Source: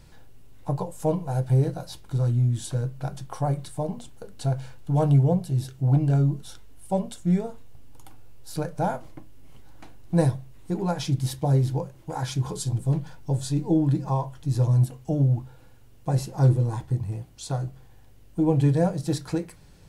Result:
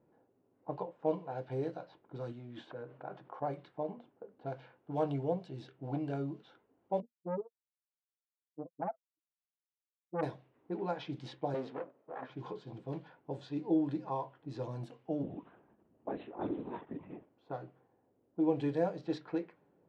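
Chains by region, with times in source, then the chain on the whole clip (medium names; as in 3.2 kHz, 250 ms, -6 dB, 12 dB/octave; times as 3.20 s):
2.32–3.42 s: bass shelf 300 Hz -8.5 dB + decay stretcher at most 35 dB/s
7.00–10.23 s: spectral contrast enhancement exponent 3.9 + transformer saturation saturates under 680 Hz
11.54–12.30 s: comb filter that takes the minimum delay 1.6 ms + high-pass 200 Hz
15.23–17.30 s: comb 3.1 ms, depth 68% + LPC vocoder at 8 kHz whisper
whole clip: level-controlled noise filter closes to 610 Hz, open at -18 dBFS; Chebyshev band-pass 310–3200 Hz, order 2; trim -6.5 dB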